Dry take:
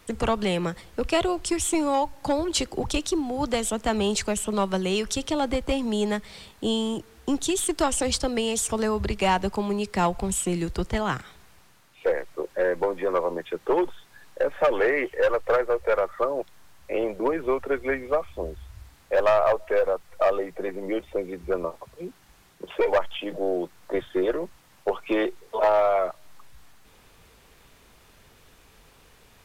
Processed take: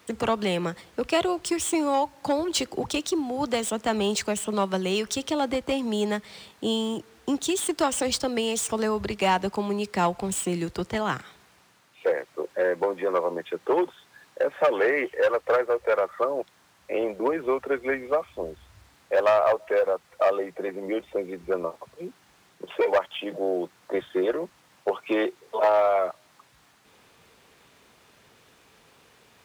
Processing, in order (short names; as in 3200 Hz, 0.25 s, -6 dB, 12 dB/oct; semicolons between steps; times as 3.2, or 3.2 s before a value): median filter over 3 samples; Bessel high-pass 150 Hz, order 2